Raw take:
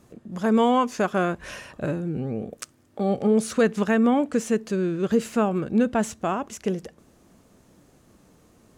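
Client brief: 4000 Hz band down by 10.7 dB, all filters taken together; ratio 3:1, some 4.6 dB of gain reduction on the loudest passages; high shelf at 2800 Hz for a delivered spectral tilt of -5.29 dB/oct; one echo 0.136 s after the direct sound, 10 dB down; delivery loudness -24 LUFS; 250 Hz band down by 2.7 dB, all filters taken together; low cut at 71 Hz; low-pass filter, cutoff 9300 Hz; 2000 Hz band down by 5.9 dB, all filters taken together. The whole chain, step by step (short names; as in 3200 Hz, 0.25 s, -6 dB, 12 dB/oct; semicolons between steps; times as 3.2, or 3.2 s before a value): HPF 71 Hz; LPF 9300 Hz; bell 250 Hz -3 dB; bell 2000 Hz -4 dB; high shelf 2800 Hz -7.5 dB; bell 4000 Hz -7 dB; compressor 3:1, threshold -23 dBFS; echo 0.136 s -10 dB; gain +4.5 dB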